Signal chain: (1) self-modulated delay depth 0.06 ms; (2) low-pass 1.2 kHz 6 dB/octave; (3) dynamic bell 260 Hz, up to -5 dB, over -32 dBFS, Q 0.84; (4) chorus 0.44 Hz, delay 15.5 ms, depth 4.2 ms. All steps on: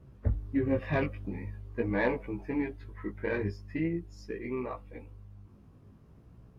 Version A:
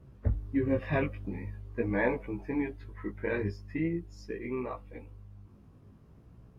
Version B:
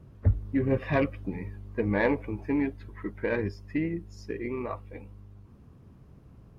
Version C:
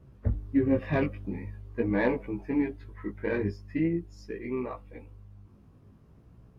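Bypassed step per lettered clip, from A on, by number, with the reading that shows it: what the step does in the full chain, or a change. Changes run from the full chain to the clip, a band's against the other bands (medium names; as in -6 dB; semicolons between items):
1, 4 kHz band -2.5 dB; 4, loudness change +3.5 LU; 3, loudness change +3.0 LU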